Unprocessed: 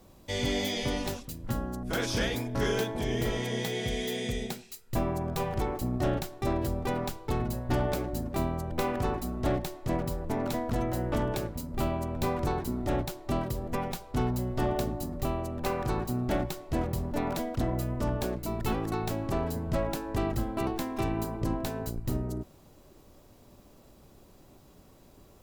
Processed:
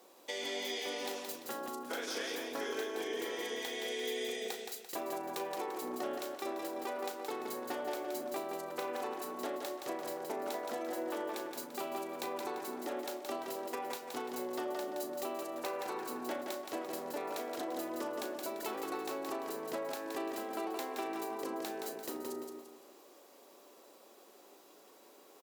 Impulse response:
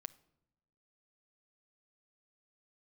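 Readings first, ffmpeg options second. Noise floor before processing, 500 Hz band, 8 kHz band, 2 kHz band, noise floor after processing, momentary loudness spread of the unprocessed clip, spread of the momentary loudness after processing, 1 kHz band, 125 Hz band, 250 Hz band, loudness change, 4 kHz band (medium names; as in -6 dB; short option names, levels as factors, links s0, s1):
-56 dBFS, -5.0 dB, -3.5 dB, -4.5 dB, -59 dBFS, 4 LU, 14 LU, -5.0 dB, -33.5 dB, -11.0 dB, -7.5 dB, -4.5 dB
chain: -filter_complex "[0:a]highpass=f=350:w=0.5412,highpass=f=350:w=1.3066,bandreject=f=620:w=18,acompressor=threshold=0.0141:ratio=6,asplit=2[s0][s1];[s1]adelay=36,volume=0.266[s2];[s0][s2]amix=inputs=2:normalize=0,asplit=2[s3][s4];[s4]aecho=0:1:171|342|513|684|855:0.562|0.208|0.077|0.0285|0.0105[s5];[s3][s5]amix=inputs=2:normalize=0"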